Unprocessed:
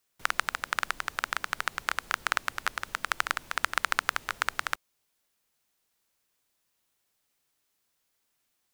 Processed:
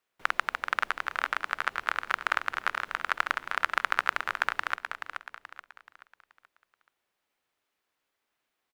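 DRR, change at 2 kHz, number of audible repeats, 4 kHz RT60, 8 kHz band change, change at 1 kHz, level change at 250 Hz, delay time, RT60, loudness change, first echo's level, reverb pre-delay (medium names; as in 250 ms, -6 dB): no reverb, +1.5 dB, 4, no reverb, -10.0 dB, +2.0 dB, -1.0 dB, 429 ms, no reverb, +1.0 dB, -8.0 dB, no reverb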